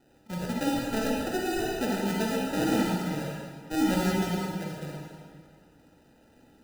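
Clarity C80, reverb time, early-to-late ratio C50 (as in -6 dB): 0.0 dB, 2.0 s, -2.0 dB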